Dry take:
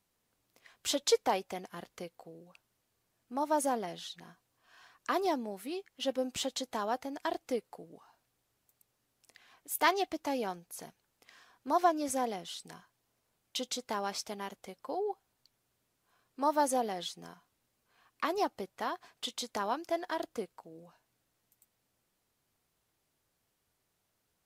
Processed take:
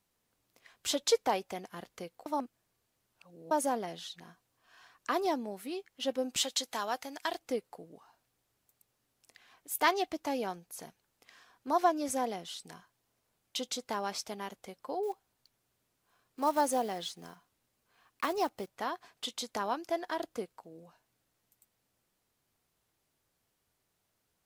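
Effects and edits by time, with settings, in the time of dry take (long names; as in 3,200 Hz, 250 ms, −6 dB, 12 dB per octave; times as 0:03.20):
0:02.26–0:03.51: reverse
0:06.36–0:07.39: tilt shelving filter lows −6.5 dB
0:15.03–0:18.75: one scale factor per block 5 bits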